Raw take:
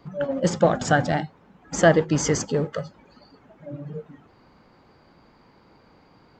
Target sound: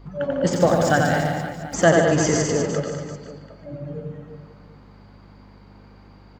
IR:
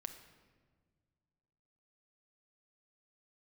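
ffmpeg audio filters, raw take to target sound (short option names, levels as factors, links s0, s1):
-filter_complex "[0:a]asettb=1/sr,asplit=3[s0][s1][s2];[s0]atrim=end=0.534[s3];[s1]atrim=start=0.53:end=1.74,asetpts=PTS-STARTPTS,afade=t=in:d=0.004:c=qsin,afade=t=out:st=1.206:d=0.004:c=qsin,aeval=exprs='val(0)*gte(abs(val(0)),0.0141)':c=same[s4];[s2]atrim=start=1.736[s5];[s3][s4]acrossfade=d=0.004:c1=hsin:c2=qsin[s6];[s6][s5]acrossfade=d=0.004:c1=qsin:c2=hsin,aecho=1:1:90|202.5|343.1|518.9|738.6:0.631|0.398|0.251|0.158|0.1,aeval=exprs='val(0)+0.00631*(sin(2*PI*50*n/s)+sin(2*PI*2*50*n/s)/2+sin(2*PI*3*50*n/s)/3+sin(2*PI*4*50*n/s)/4+sin(2*PI*5*50*n/s)/5)':c=same,asplit=2[s7][s8];[1:a]atrim=start_sample=2205,adelay=149[s9];[s8][s9]afir=irnorm=-1:irlink=0,volume=0.562[s10];[s7][s10]amix=inputs=2:normalize=0"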